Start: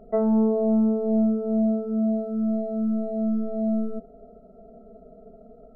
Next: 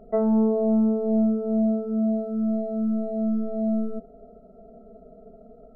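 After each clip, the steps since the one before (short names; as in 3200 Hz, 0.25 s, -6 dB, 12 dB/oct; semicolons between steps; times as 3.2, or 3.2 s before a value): nothing audible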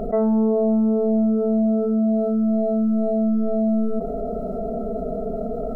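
fast leveller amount 70%; gain +1 dB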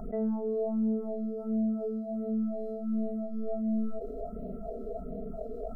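phaser stages 4, 1.4 Hz, lowest notch 140–1200 Hz; gain -9 dB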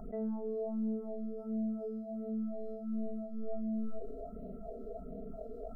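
resonator 270 Hz, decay 1.2 s, mix 60%; gain +1.5 dB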